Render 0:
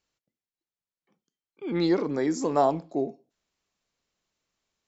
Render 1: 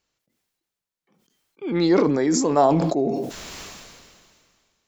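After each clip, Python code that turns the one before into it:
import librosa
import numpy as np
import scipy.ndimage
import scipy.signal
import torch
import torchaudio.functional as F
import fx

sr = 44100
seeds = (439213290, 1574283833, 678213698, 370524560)

y = fx.sustainer(x, sr, db_per_s=29.0)
y = y * librosa.db_to_amplitude(4.5)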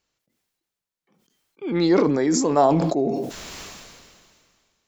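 y = x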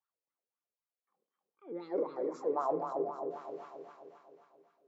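y = fx.wah_lfo(x, sr, hz=3.9, low_hz=440.0, high_hz=1300.0, q=6.5)
y = fx.echo_feedback(y, sr, ms=265, feedback_pct=56, wet_db=-6.0)
y = fx.rev_fdn(y, sr, rt60_s=0.73, lf_ratio=1.0, hf_ratio=0.35, size_ms=58.0, drr_db=13.5)
y = y * librosa.db_to_amplitude(-5.0)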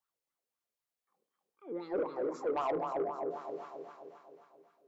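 y = 10.0 ** (-29.0 / 20.0) * np.tanh(x / 10.0 ** (-29.0 / 20.0))
y = y * librosa.db_to_amplitude(2.5)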